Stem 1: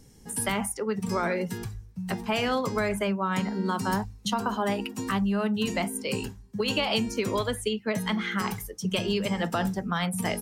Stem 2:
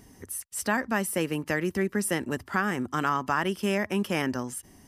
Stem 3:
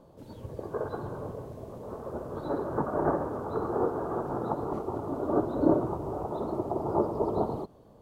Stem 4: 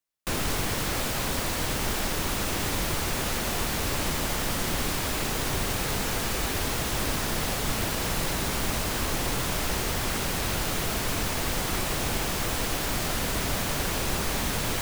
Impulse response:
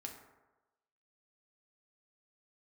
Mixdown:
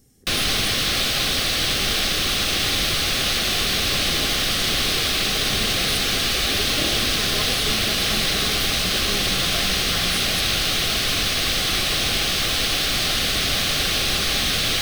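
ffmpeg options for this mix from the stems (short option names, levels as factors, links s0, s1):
-filter_complex "[0:a]highshelf=f=8500:g=11.5,volume=0.501[s0];[1:a]lowpass=1000,volume=0.211,asplit=2[s1][s2];[2:a]adelay=1150,volume=0.355[s3];[3:a]equalizer=f=3700:t=o:w=1.6:g=14,bandreject=f=7200:w=9.3,volume=1.19[s4];[s2]apad=whole_len=459161[s5];[s0][s5]sidechaincompress=threshold=0.001:ratio=8:attack=35:release=971[s6];[s6][s1][s3][s4]amix=inputs=4:normalize=0,asuperstop=centerf=930:order=20:qfactor=4.9"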